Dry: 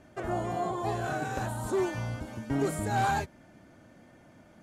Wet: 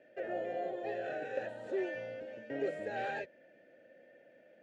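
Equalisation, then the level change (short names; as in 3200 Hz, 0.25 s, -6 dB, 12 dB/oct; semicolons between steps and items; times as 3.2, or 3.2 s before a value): vowel filter e; BPF 110–6300 Hz; +7.0 dB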